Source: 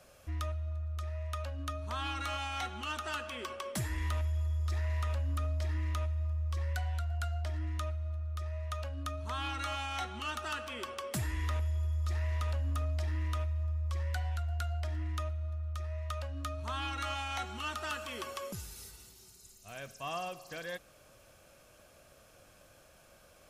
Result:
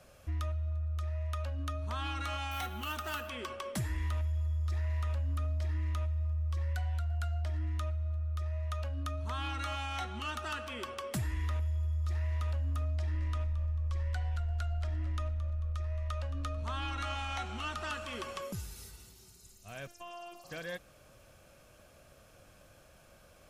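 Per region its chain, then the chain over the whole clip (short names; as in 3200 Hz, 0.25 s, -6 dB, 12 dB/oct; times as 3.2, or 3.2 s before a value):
2.51–3.29 high shelf 8500 Hz +4.5 dB + careless resampling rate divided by 3×, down none, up hold
12.91–18.42 LPF 10000 Hz + frequency-shifting echo 0.221 s, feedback 43%, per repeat -58 Hz, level -14.5 dB
19.87–20.44 robotiser 347 Hz + compressor 5:1, threshold -41 dBFS
whole clip: tone controls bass +4 dB, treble -2 dB; compressor 2.5:1, threshold -32 dBFS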